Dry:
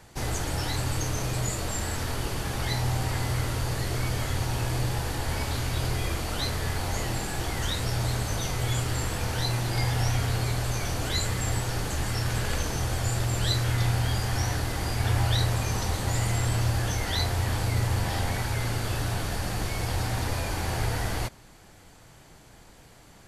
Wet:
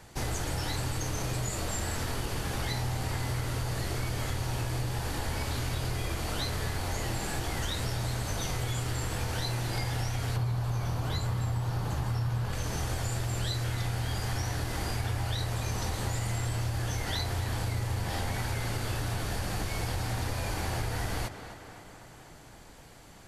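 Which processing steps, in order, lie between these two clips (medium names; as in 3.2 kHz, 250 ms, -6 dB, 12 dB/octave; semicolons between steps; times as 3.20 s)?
10.36–12.53 s: ten-band graphic EQ 125 Hz +11 dB, 1 kHz +7 dB, 2 kHz -4 dB, 8 kHz -7 dB; tape echo 256 ms, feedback 70%, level -13 dB, low-pass 3.7 kHz; compression 6:1, threshold -28 dBFS, peak gain reduction 12 dB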